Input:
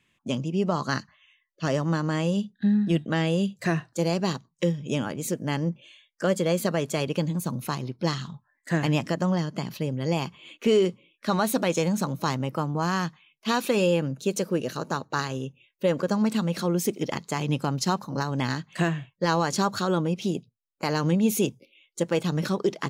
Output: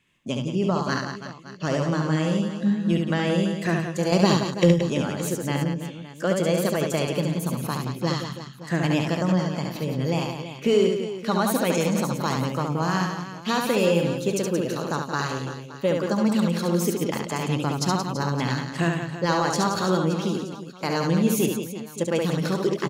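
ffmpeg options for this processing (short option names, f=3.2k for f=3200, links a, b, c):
-filter_complex "[0:a]asettb=1/sr,asplit=3[a][b][c];[a]atrim=end=4.124[d];[b]atrim=start=4.12:end=4.72,asetpts=PTS-STARTPTS,afade=t=in:d=0.004:c=qsin,afade=t=out:st=0.596:d=0.004:c=qsin,acontrast=67[e];[c]atrim=start=4.716[f];[d][e]acrossfade=d=0.004:c1=hsin:c2=qsin[g];[g][f]acrossfade=d=0.004:c1=qsin:c2=hsin,aecho=1:1:70|175|332.5|568.8|923.1:0.631|0.398|0.251|0.158|0.1"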